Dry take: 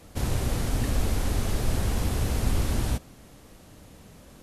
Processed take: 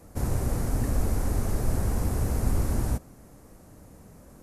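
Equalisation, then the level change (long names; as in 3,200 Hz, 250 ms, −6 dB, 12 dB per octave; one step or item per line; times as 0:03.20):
parametric band 3,300 Hz −14.5 dB 1.2 octaves
0.0 dB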